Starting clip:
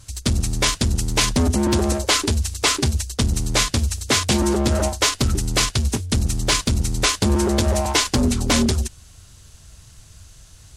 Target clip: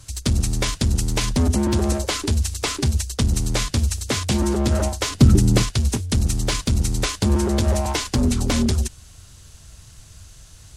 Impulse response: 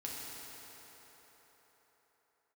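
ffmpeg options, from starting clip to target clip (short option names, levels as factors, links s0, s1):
-filter_complex "[0:a]acrossover=split=230[s0][s1];[s1]acompressor=threshold=0.0708:ratio=6[s2];[s0][s2]amix=inputs=2:normalize=0,asettb=1/sr,asplit=3[s3][s4][s5];[s3]atrim=end=5.104[s6];[s4]atrim=start=5.1:end=5.63,asetpts=PTS-STARTPTS,afade=t=in:d=0.004:c=qsin,afade=t=out:st=0.526:d=0.004:c=qsin,equalizer=f=180:w=0.45:g=11[s7];[s5]atrim=start=5.626[s8];[s6][s7]acrossfade=d=0.004:c1=hsin:c2=qsin[s9];[s9][s8]acrossfade=d=0.004:c1=qsin:c2=hsin,volume=1.12"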